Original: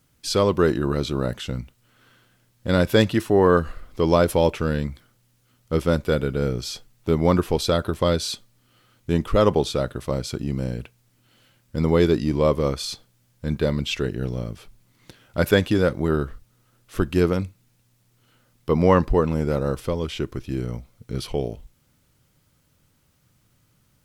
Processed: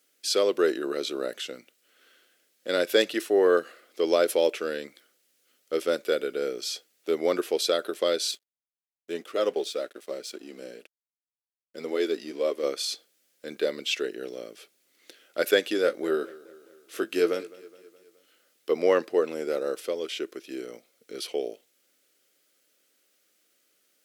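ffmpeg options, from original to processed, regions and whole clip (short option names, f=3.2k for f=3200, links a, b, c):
-filter_complex "[0:a]asettb=1/sr,asplit=3[a][b][c];[a]atrim=end=8.314[d];[b]atrim=start=8.31:end=12.63,asetpts=PTS-STARTPTS,afade=t=in:d=0.004:c=qsin,afade=t=out:st=4.316:d=0.004:c=qsin,flanger=delay=2.7:depth=2.9:regen=-39:speed=1.9:shape=triangular,aeval=exprs='sgn(val(0))*max(abs(val(0))-0.00299,0)':c=same[e];[c]atrim=start=12.626[f];[d][e]acrossfade=d=0.004:c1=hsin:c2=qsin[g];[g][f]acrossfade=d=0.004:c1=qsin:c2=hsin,asettb=1/sr,asplit=3[h][i][j];[h]atrim=end=15.824[k];[i]atrim=start=15.82:end=18.7,asetpts=PTS-STARTPTS,afade=t=in:d=0.004:c=qsin,afade=t=out:st=2.876:d=0.004:c=qsin,asplit=2[l][m];[m]adelay=18,volume=-8dB[n];[l][n]amix=inputs=2:normalize=0,atrim=end_sample=127008,aecho=1:1:210|420|630|840:0.0944|0.0529|0.0296|0.0166,atrim=end_sample=127008[o];[j]atrim=start=18.696[p];[k][o]acrossfade=d=0.004:c1=hsin:c2=qsin[q];[q][p]acrossfade=d=0.004:c1=qsin:c2=hsin,highpass=f=370:w=0.5412,highpass=f=370:w=1.3066,equalizer=f=960:w=2.2:g=-15"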